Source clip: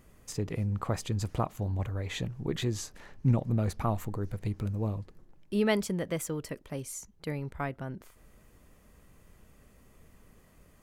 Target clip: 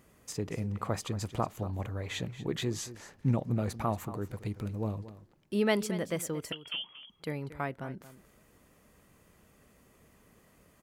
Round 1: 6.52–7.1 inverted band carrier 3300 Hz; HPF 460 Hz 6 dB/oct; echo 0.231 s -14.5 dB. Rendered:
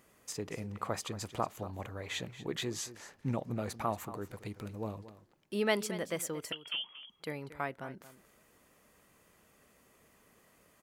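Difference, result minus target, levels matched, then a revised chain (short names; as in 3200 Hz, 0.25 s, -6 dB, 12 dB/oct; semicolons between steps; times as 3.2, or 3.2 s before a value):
125 Hz band -4.5 dB
6.52–7.1 inverted band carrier 3300 Hz; HPF 140 Hz 6 dB/oct; echo 0.231 s -14.5 dB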